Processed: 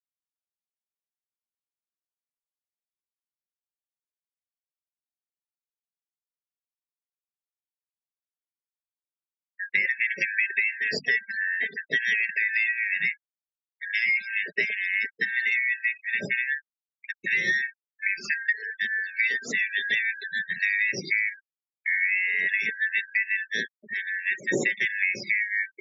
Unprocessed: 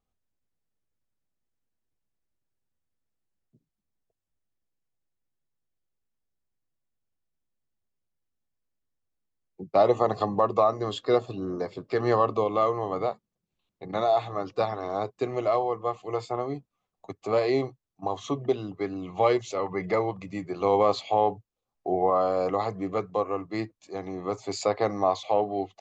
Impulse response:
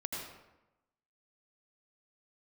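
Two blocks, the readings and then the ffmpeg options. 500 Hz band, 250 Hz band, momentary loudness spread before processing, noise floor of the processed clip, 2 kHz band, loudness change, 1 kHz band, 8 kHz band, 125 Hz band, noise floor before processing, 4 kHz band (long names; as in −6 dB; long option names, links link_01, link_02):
−17.0 dB, −11.0 dB, 11 LU, below −85 dBFS, +21.0 dB, +2.0 dB, below −30 dB, can't be measured, −12.5 dB, −85 dBFS, +4.5 dB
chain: -af "afftfilt=real='real(if(lt(b,272),68*(eq(floor(b/68),0)*3+eq(floor(b/68),1)*0+eq(floor(b/68),2)*1+eq(floor(b/68),3)*2)+mod(b,68),b),0)':imag='imag(if(lt(b,272),68*(eq(floor(b/68),0)*3+eq(floor(b/68),1)*0+eq(floor(b/68),2)*1+eq(floor(b/68),3)*2)+mod(b,68),b),0)':win_size=2048:overlap=0.75,flanger=delay=4.5:depth=1:regen=16:speed=0.26:shape=sinusoidal,highpass=frequency=110:width=0.5412,highpass=frequency=110:width=1.3066,lowshelf=frequency=690:width_type=q:width=1.5:gain=12,bandreject=frequency=50:width_type=h:width=6,bandreject=frequency=100:width_type=h:width=6,bandreject=frequency=150:width_type=h:width=6,bandreject=frequency=200:width_type=h:width=6,bandreject=frequency=250:width_type=h:width=6,bandreject=frequency=300:width_type=h:width=6,acompressor=threshold=-30dB:ratio=10,afftfilt=real='re*gte(hypot(re,im),0.00708)':imag='im*gte(hypot(re,im),0.00708)':win_size=1024:overlap=0.75,volume=9dB"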